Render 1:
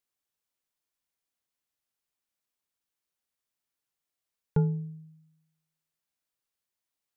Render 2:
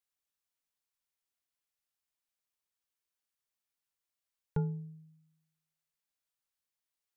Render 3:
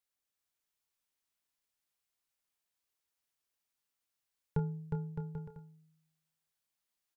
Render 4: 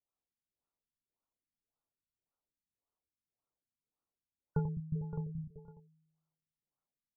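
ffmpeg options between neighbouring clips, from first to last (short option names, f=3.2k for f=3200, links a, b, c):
-af "equalizer=f=260:t=o:w=2.6:g=-5.5,volume=-3dB"
-filter_complex "[0:a]asplit=2[a][b];[b]adelay=29,volume=-12dB[c];[a][c]amix=inputs=2:normalize=0,asplit=2[d][e];[e]aecho=0:1:360|612|788.4|911.9|998.3:0.631|0.398|0.251|0.158|0.1[f];[d][f]amix=inputs=2:normalize=0"
-af "aecho=1:1:90.38|207:0.398|0.501,afftfilt=real='re*lt(b*sr/1024,270*pow(1500/270,0.5+0.5*sin(2*PI*1.8*pts/sr)))':imag='im*lt(b*sr/1024,270*pow(1500/270,0.5+0.5*sin(2*PI*1.8*pts/sr)))':win_size=1024:overlap=0.75"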